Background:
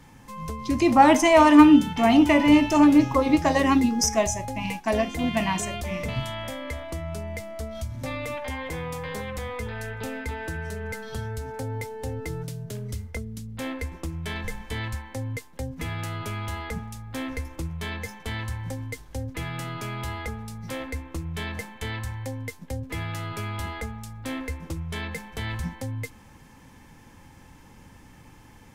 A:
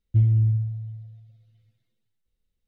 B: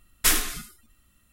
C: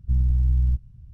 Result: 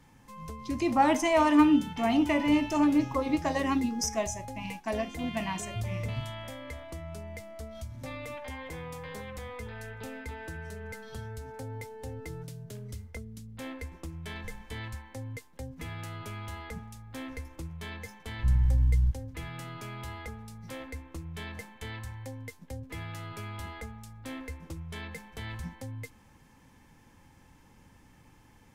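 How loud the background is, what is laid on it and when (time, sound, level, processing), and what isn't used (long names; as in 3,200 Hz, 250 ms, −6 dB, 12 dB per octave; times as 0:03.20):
background −8 dB
0:05.61: mix in A −16.5 dB + variable-slope delta modulation 64 kbit/s
0:18.35: mix in C −3.5 dB
not used: B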